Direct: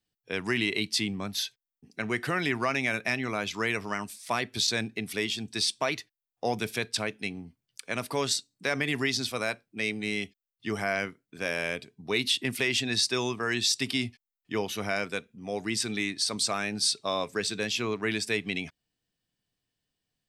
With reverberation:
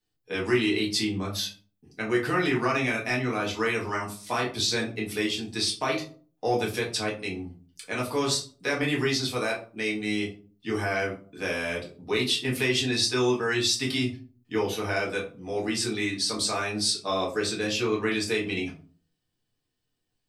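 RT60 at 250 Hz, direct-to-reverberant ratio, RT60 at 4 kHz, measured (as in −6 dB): 0.55 s, −4.5 dB, 0.25 s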